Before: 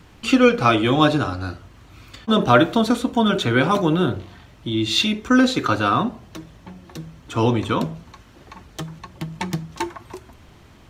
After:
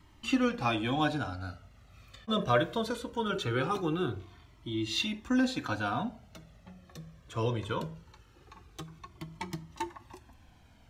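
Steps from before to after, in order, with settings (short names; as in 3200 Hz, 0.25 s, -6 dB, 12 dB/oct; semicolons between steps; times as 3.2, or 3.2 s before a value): cascading flanger falling 0.21 Hz; gain -7.5 dB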